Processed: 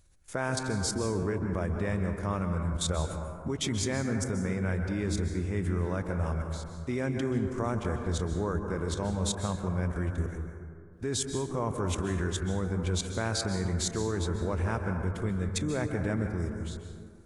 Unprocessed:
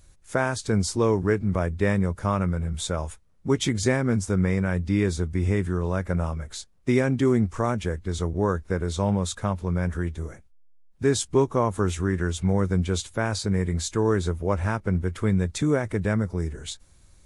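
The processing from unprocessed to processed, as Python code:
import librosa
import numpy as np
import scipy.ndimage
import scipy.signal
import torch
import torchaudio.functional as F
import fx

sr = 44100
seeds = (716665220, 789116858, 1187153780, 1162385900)

y = fx.level_steps(x, sr, step_db=16)
y = fx.rev_plate(y, sr, seeds[0], rt60_s=2.1, hf_ratio=0.3, predelay_ms=120, drr_db=4.5)
y = y * librosa.db_to_amplitude(1.5)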